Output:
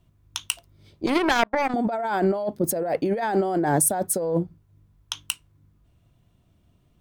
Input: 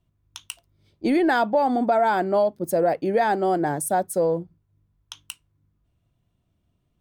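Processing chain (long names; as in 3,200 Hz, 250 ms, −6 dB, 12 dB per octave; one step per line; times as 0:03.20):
0:01.06–0:01.74: power curve on the samples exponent 3
compressor whose output falls as the input rises −27 dBFS, ratio −1
level +4 dB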